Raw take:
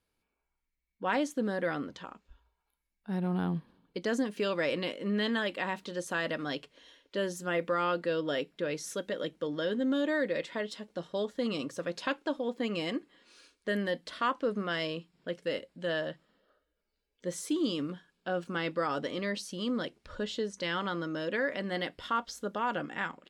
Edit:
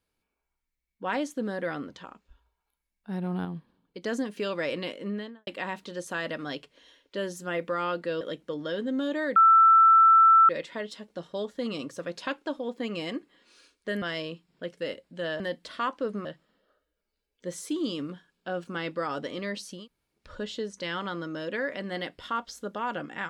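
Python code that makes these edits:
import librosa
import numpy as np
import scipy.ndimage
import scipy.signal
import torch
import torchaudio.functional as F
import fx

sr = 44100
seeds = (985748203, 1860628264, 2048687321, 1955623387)

y = fx.studio_fade_out(x, sr, start_s=4.98, length_s=0.49)
y = fx.edit(y, sr, fx.clip_gain(start_s=3.45, length_s=0.58, db=-4.5),
    fx.cut(start_s=8.21, length_s=0.93),
    fx.insert_tone(at_s=10.29, length_s=1.13, hz=1330.0, db=-13.5),
    fx.move(start_s=13.82, length_s=0.85, to_s=16.05),
    fx.room_tone_fill(start_s=19.6, length_s=0.39, crossfade_s=0.16), tone=tone)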